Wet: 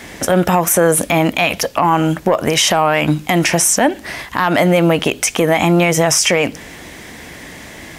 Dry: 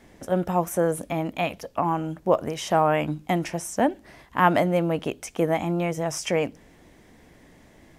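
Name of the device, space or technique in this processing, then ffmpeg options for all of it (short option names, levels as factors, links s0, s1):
mastering chain: -af "highpass=41,equalizer=f=2000:t=o:w=1.6:g=2.5,acompressor=threshold=0.0631:ratio=2.5,asoftclip=type=tanh:threshold=0.2,tiltshelf=f=1300:g=-4.5,alimiter=level_in=14.1:limit=0.891:release=50:level=0:latency=1,volume=0.708"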